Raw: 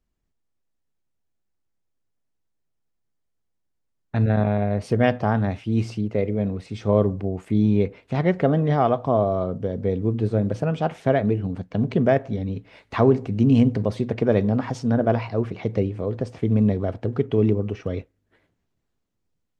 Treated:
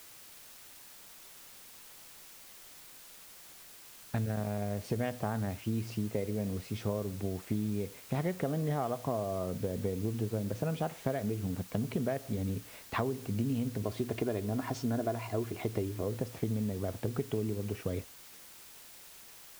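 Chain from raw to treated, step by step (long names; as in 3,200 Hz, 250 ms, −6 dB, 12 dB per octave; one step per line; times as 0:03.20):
0:13.82–0:16.03: comb filter 2.9 ms, depth 51%
downward compressor 20 to 1, threshold −24 dBFS, peak gain reduction 14 dB
bit-depth reduction 8 bits, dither triangular
level −4.5 dB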